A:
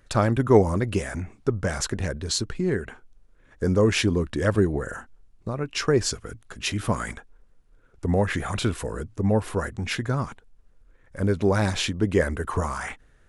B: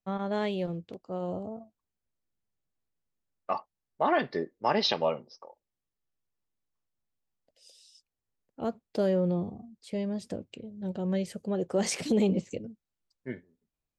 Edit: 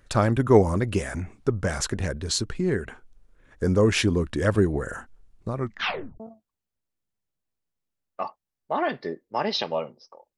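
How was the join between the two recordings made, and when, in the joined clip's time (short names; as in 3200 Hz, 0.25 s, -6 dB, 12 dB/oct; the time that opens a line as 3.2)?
A
5.55 tape stop 0.65 s
6.2 switch to B from 1.5 s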